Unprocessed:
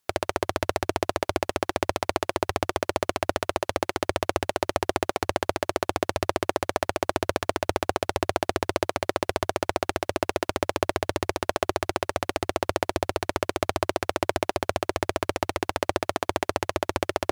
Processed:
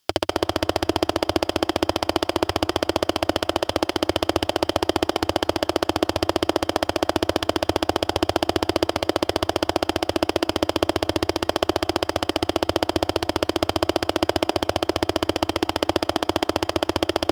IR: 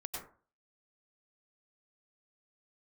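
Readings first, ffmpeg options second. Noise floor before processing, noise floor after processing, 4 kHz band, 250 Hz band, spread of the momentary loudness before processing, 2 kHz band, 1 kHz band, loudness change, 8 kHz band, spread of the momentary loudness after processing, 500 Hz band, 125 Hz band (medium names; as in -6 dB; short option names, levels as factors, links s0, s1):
-72 dBFS, -41 dBFS, +9.0 dB, +8.5 dB, 1 LU, +2.0 dB, +2.5 dB, +4.5 dB, +2.0 dB, 1 LU, +4.0 dB, +3.5 dB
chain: -filter_complex "[0:a]equalizer=f=315:t=o:w=0.33:g=6,equalizer=f=3150:t=o:w=0.33:g=10,equalizer=f=5000:t=o:w=0.33:g=10,acontrast=52,asplit=2[s0][s1];[1:a]atrim=start_sample=2205,highshelf=f=6600:g=-6,adelay=130[s2];[s1][s2]afir=irnorm=-1:irlink=0,volume=0.158[s3];[s0][s3]amix=inputs=2:normalize=0,volume=0.841"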